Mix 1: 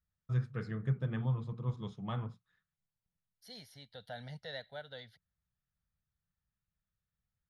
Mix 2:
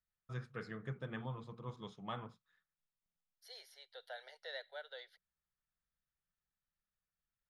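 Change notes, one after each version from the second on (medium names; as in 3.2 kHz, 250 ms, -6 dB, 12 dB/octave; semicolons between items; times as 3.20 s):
second voice: add rippled Chebyshev high-pass 370 Hz, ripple 3 dB; master: add peaking EQ 95 Hz -14 dB 2.5 oct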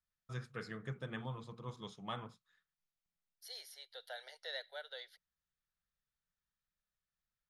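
master: add treble shelf 4.5 kHz +11.5 dB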